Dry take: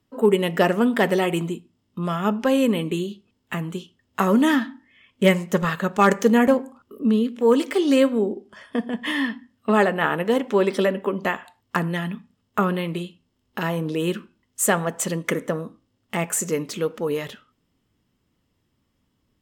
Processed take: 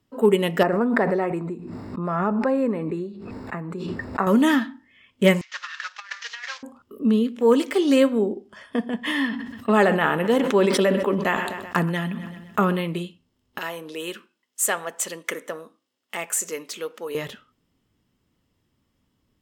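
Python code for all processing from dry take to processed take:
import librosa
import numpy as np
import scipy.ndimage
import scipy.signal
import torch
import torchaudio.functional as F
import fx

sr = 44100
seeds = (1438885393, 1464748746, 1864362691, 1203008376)

y = fx.chain(x, sr, fx.moving_average(points=14),
    fx.low_shelf(hz=230.0, db=-9.0),
    fx.pre_swell(db_per_s=24.0), at=(0.63, 4.27))
y = fx.chain(y, sr, fx.cvsd(bps=32000),
    fx.highpass(hz=1500.0, slope=24),
    fx.over_compress(threshold_db=-33.0, ratio=-0.5), at=(5.41, 6.63))
y = fx.chain(y, sr, fx.echo_feedback(ms=127, feedback_pct=53, wet_db=-21),
    fx.sustainer(db_per_s=44.0), at=(9.27, 12.81))
y = fx.chain(y, sr, fx.highpass(hz=510.0, slope=12),
    fx.peak_eq(hz=800.0, db=-4.5, octaves=2.2), at=(13.58, 17.15))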